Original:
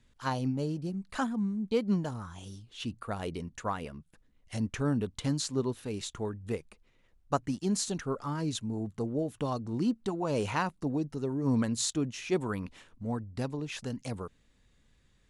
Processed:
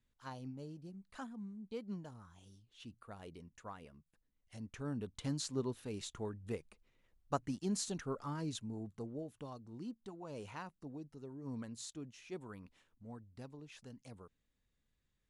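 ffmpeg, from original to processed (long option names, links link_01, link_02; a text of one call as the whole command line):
ffmpeg -i in.wav -af "volume=-7dB,afade=type=in:start_time=4.64:duration=0.8:silence=0.375837,afade=type=out:start_time=8.29:duration=1.26:silence=0.334965" out.wav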